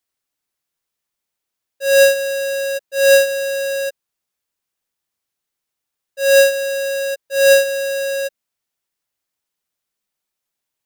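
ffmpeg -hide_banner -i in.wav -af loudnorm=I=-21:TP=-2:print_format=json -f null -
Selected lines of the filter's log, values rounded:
"input_i" : "-16.3",
"input_tp" : "-5.2",
"input_lra" : "13.4",
"input_thresh" : "-26.8",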